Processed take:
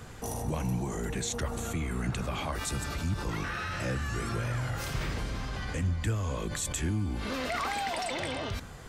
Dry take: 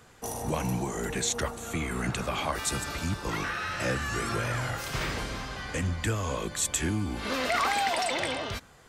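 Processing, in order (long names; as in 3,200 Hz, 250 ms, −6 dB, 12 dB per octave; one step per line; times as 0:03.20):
low-shelf EQ 210 Hz +10 dB
in parallel at 0 dB: compressor whose output falls as the input rises −39 dBFS, ratio −1
on the sum: level −7.5 dB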